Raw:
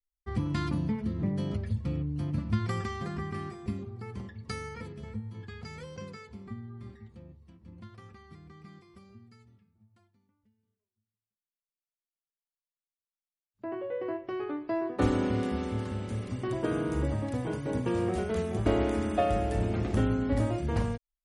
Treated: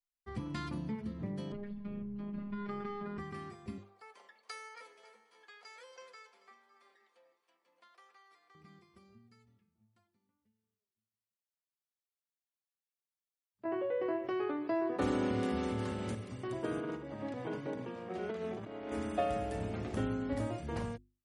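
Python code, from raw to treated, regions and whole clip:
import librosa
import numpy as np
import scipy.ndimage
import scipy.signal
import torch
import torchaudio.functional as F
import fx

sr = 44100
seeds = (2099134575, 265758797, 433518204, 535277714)

y = fx.chain(x, sr, fx.robotise(hz=204.0),
    fx.air_absorb(metres=410.0),
    fx.env_flatten(amount_pct=50), at=(1.52, 3.18))
y = fx.chain(y, sr, fx.highpass(hz=540.0, slope=24),
    fx.echo_split(split_hz=760.0, low_ms=87, high_ms=278, feedback_pct=52, wet_db=-15.5), at=(3.78, 8.55))
y = fx.chain(y, sr, fx.highpass(hz=43.0, slope=12),
    fx.env_flatten(amount_pct=50), at=(13.65, 16.15))
y = fx.chain(y, sr, fx.over_compress(threshold_db=-32.0, ratio=-1.0),
    fx.bandpass_edges(low_hz=150.0, high_hz=4300.0), at=(16.8, 18.92))
y = fx.low_shelf(y, sr, hz=100.0, db=-9.0)
y = fx.hum_notches(y, sr, base_hz=50, count=7)
y = y * 10.0 ** (-5.5 / 20.0)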